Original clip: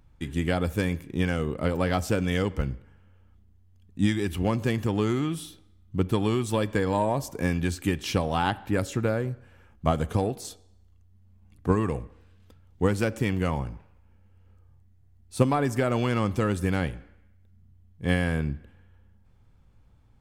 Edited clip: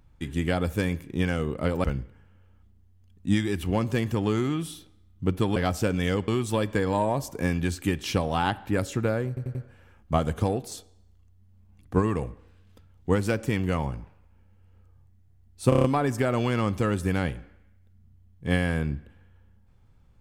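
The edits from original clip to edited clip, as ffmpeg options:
-filter_complex "[0:a]asplit=12[s0][s1][s2][s3][s4][s5][s6][s7][s8][s9][s10][s11];[s0]atrim=end=1.842[s12];[s1]atrim=start=2.558:end=6.282[s13];[s2]atrim=start=1.838:end=2.562[s14];[s3]atrim=start=6.278:end=9.372[s15];[s4]atrim=start=9.278:end=9.372[s16];[s5]atrim=start=9.278:end=9.372[s17];[s6]atrim=start=9.278:end=15.452[s18];[s7]atrim=start=15.418:end=15.452[s19];[s8]atrim=start=15.418:end=15.452[s20];[s9]atrim=start=15.418:end=15.452[s21];[s10]atrim=start=15.418:end=15.452[s22];[s11]atrim=start=15.418[s23];[s12][s13]acrossfade=d=0.004:c1=hsin:c2=hsin[s24];[s24][s14]acrossfade=d=0.004:c1=hsin:c2=hsin[s25];[s25][s15]acrossfade=d=0.004:c1=hsin:c2=hsin[s26];[s26][s16]acrossfade=d=0.004:c1=hsin:c2=hsin[s27];[s27][s17]acrossfade=d=0.004:c1=hsin:c2=hsin[s28];[s28][s18]acrossfade=d=0.004:c1=hsin:c2=hsin[s29];[s29][s19]acrossfade=d=0.004:c1=hsin:c2=hsin[s30];[s30][s20]acrossfade=d=0.004:c1=hsin:c2=hsin[s31];[s31][s21]acrossfade=d=0.004:c1=hsin:c2=hsin[s32];[s32][s22]acrossfade=d=0.004:c1=hsin:c2=hsin[s33];[s33][s23]acrossfade=d=0.004:c1=hsin:c2=hsin"

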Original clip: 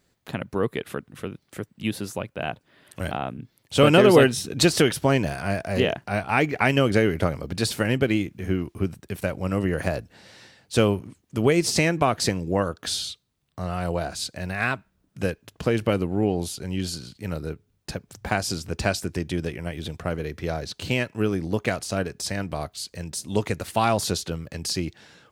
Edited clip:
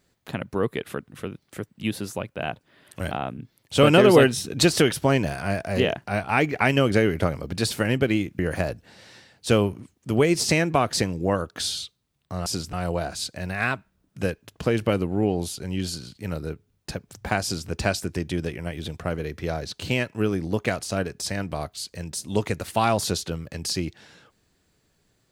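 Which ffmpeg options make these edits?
-filter_complex "[0:a]asplit=4[s0][s1][s2][s3];[s0]atrim=end=8.392[s4];[s1]atrim=start=9.658:end=13.732[s5];[s2]atrim=start=18.428:end=18.702[s6];[s3]atrim=start=13.728[s7];[s4][s5]acrossfade=d=0.004:c1=hsin:c2=hsin[s8];[s8][s6]acrossfade=d=0.004:c1=hsin:c2=hsin[s9];[s9][s7]acrossfade=d=0.004:c1=hsin:c2=hsin"

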